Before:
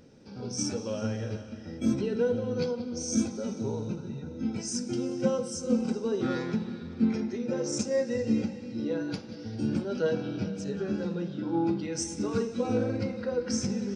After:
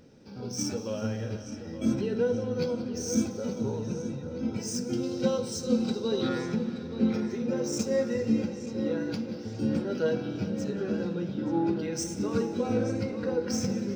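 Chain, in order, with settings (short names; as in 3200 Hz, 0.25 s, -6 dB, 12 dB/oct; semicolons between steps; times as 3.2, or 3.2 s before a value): median filter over 3 samples; 5.03–6.29 bell 4000 Hz +15 dB 0.4 oct; darkening echo 0.876 s, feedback 75%, low-pass 4400 Hz, level -11 dB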